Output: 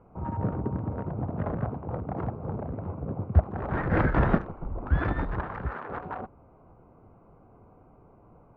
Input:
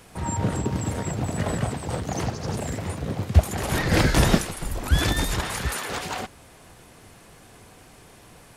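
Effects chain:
adaptive Wiener filter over 25 samples
transistor ladder low-pass 1,800 Hz, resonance 35%
level +3.5 dB

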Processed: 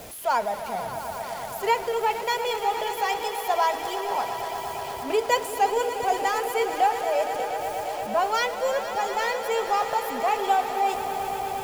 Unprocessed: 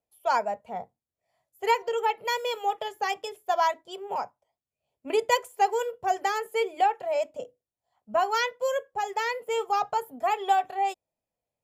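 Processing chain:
converter with a step at zero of −34 dBFS
echo that builds up and dies away 117 ms, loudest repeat 5, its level −13.5 dB

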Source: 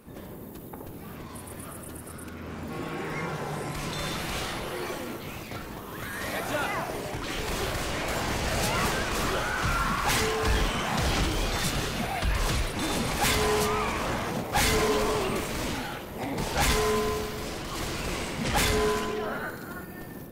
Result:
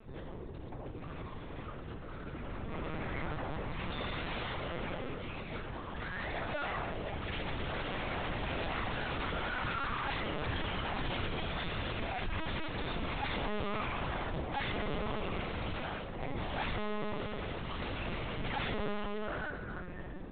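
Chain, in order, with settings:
soft clipping −31.5 dBFS, distortion −8 dB
on a send at −16.5 dB: convolution reverb RT60 0.40 s, pre-delay 3 ms
on the sum: linear-prediction vocoder at 8 kHz pitch kept
level −1.5 dB

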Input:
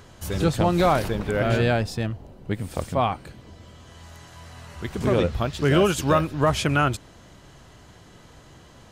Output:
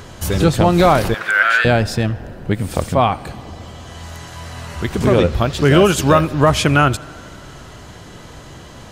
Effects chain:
in parallel at −1 dB: downward compressor, threshold −31 dBFS, peak gain reduction 15.5 dB
0:01.14–0:01.65: on the sum: high-pass with resonance 1,500 Hz, resonance Q 4
tape delay 83 ms, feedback 89%, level −23 dB, low-pass 5,000 Hz
level +6 dB

